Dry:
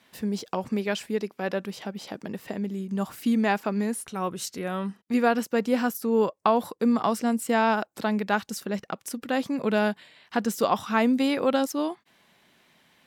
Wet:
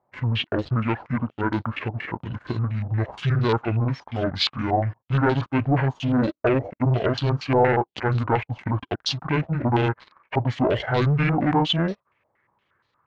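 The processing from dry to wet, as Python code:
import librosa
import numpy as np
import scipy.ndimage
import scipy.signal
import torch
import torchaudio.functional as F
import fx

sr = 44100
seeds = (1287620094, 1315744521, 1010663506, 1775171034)

y = fx.pitch_heads(x, sr, semitones=-10.0)
y = fx.leveller(y, sr, passes=3)
y = fx.filter_held_lowpass(y, sr, hz=8.5, low_hz=750.0, high_hz=4000.0)
y = F.gain(torch.from_numpy(y), -5.0).numpy()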